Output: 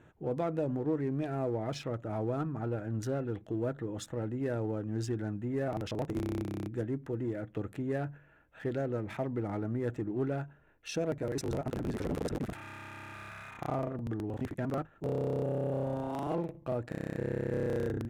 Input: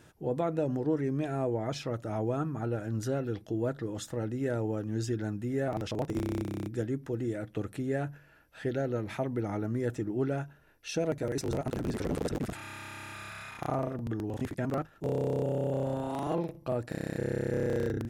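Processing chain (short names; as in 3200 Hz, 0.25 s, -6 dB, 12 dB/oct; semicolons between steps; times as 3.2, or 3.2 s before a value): Wiener smoothing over 9 samples; in parallel at -10.5 dB: overloaded stage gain 31.5 dB; on the sum: gain -3.5 dB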